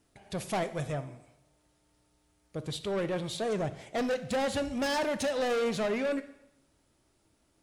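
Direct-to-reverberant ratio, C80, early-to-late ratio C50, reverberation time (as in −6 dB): 11.0 dB, 16.5 dB, 14.0 dB, 0.85 s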